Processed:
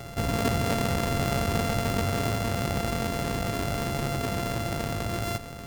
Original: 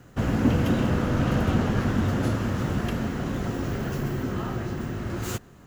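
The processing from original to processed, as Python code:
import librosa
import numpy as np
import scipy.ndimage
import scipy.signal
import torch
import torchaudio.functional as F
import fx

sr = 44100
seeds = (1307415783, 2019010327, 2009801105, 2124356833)

y = np.r_[np.sort(x[:len(x) // 64 * 64].reshape(-1, 64), axis=1).ravel(), x[len(x) // 64 * 64:]]
y = fx.env_flatten(y, sr, amount_pct=50)
y = F.gain(torch.from_numpy(y), -6.5).numpy()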